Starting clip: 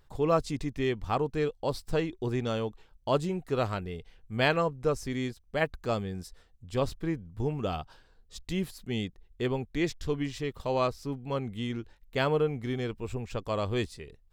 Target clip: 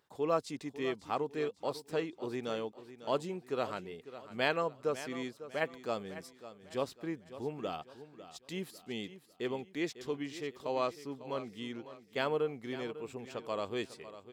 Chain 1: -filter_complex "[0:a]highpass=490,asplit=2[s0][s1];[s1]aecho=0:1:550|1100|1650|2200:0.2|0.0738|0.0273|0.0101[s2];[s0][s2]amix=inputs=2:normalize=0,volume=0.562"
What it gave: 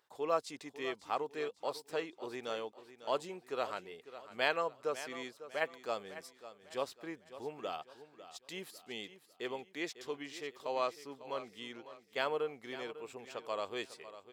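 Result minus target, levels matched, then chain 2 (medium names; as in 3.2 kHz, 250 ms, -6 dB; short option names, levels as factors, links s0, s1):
250 Hz band -5.5 dB
-filter_complex "[0:a]highpass=240,asplit=2[s0][s1];[s1]aecho=0:1:550|1100|1650|2200:0.2|0.0738|0.0273|0.0101[s2];[s0][s2]amix=inputs=2:normalize=0,volume=0.562"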